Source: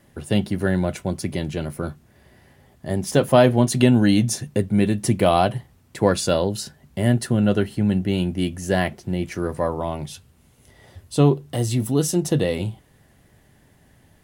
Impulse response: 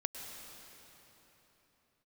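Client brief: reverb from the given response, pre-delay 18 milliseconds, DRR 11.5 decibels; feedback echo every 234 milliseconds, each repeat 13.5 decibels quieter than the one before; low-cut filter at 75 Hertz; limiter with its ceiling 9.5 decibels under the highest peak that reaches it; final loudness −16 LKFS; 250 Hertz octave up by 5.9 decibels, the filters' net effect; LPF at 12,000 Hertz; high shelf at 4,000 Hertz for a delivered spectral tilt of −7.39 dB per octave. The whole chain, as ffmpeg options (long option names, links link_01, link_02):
-filter_complex "[0:a]highpass=75,lowpass=12000,equalizer=frequency=250:width_type=o:gain=7.5,highshelf=frequency=4000:gain=-7,alimiter=limit=-9dB:level=0:latency=1,aecho=1:1:234|468:0.211|0.0444,asplit=2[link_01][link_02];[1:a]atrim=start_sample=2205,adelay=18[link_03];[link_02][link_03]afir=irnorm=-1:irlink=0,volume=-12.5dB[link_04];[link_01][link_04]amix=inputs=2:normalize=0,volume=5dB"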